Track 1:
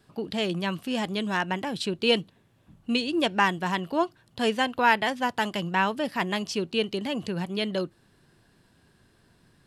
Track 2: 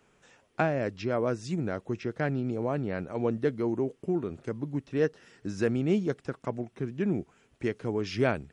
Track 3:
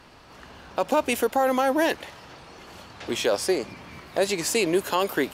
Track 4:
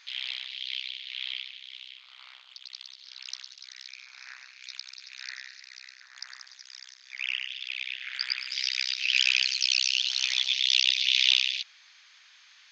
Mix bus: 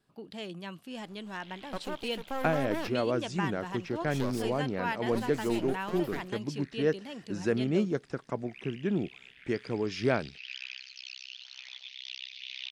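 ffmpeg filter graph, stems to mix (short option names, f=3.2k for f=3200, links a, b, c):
-filter_complex "[0:a]volume=-12.5dB,asplit=2[a][b];[1:a]agate=range=-33dB:threshold=-57dB:ratio=3:detection=peak,adelay=1850,volume=-1dB[c];[2:a]acontrast=76,aeval=exprs='max(val(0),0)':c=same,adelay=950,volume=-16dB[d];[3:a]lowpass=f=1.6k:p=1,adelay=1350,volume=-12dB[e];[b]apad=whole_len=277189[f];[d][f]sidechaincompress=threshold=-39dB:ratio=8:attack=7.5:release=230[g];[a][c][g][e]amix=inputs=4:normalize=0,equalizer=f=84:t=o:w=0.63:g=-6.5"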